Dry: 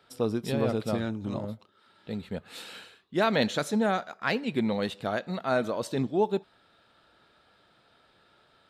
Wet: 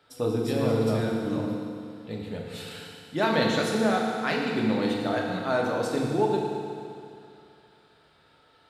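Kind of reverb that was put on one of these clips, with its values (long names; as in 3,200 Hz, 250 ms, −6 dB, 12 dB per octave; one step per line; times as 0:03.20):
feedback delay network reverb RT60 2.4 s, low-frequency decay 1×, high-frequency decay 0.95×, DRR −2 dB
level −1.5 dB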